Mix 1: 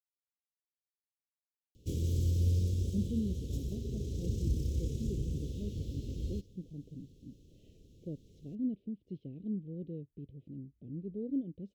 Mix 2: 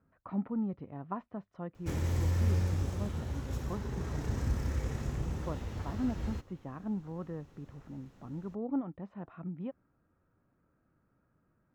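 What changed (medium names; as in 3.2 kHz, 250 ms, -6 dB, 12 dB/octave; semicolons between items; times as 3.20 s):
speech: entry -2.60 s; master: remove elliptic band-stop 450–3200 Hz, stop band 50 dB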